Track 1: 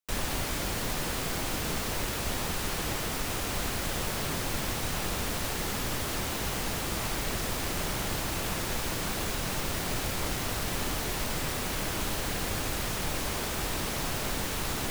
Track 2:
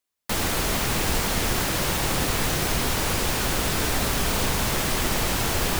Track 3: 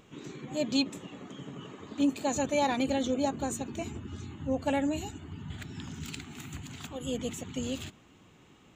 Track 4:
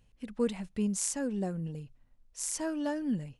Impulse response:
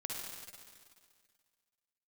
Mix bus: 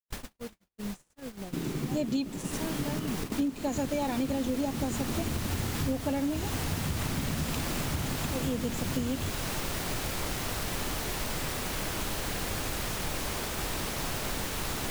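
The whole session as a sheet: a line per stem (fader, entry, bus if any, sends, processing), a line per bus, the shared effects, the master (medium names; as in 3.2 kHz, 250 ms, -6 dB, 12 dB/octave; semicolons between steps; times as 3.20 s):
-0.5 dB, 0.00 s, no send, auto duck -9 dB, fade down 0.35 s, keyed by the fourth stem
-13.5 dB, 2.10 s, no send, trance gate "xx...xxxxxx.xx." 185 bpm
+2.0 dB, 1.40 s, no send, bass shelf 440 Hz +11.5 dB
-3.5 dB, 0.00 s, no send, peak limiter -24.5 dBFS, peak gain reduction 10 dB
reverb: none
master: gate -33 dBFS, range -55 dB; compression 8:1, threshold -27 dBFS, peak gain reduction 14.5 dB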